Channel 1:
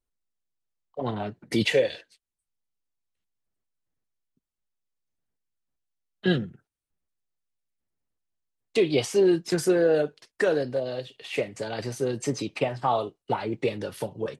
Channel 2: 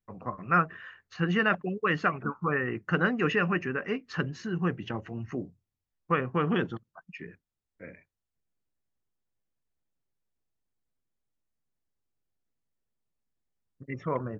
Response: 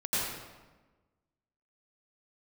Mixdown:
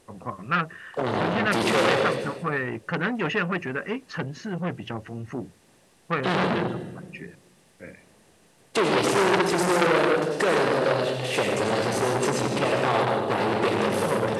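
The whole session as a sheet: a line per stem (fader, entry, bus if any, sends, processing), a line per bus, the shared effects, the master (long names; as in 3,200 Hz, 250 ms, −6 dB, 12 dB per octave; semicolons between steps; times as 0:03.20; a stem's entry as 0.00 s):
−2.5 dB, 0.00 s, send −5.5 dB, compressor on every frequency bin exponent 0.6; parametric band 9,500 Hz +4.5 dB 0.79 octaves
+3.0 dB, 0.00 s, no send, no processing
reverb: on, RT60 1.3 s, pre-delay 80 ms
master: saturating transformer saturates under 2,300 Hz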